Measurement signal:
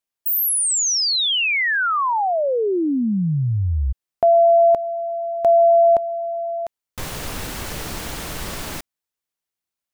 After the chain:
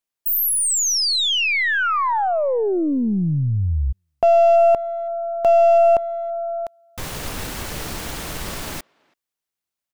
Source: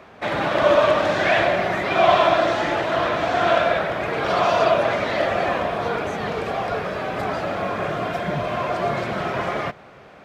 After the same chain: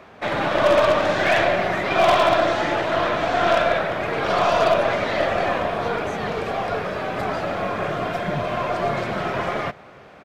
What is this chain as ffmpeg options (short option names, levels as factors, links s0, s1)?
-filter_complex "[0:a]aeval=exprs='0.708*(cos(1*acos(clip(val(0)/0.708,-1,1)))-cos(1*PI/2))+0.0224*(cos(8*acos(clip(val(0)/0.708,-1,1)))-cos(8*PI/2))':c=same,asplit=2[s0][s1];[s1]adelay=330,highpass=300,lowpass=3400,asoftclip=type=hard:threshold=0.266,volume=0.0355[s2];[s0][s2]amix=inputs=2:normalize=0,aeval=exprs='0.355*(abs(mod(val(0)/0.355+3,4)-2)-1)':c=same"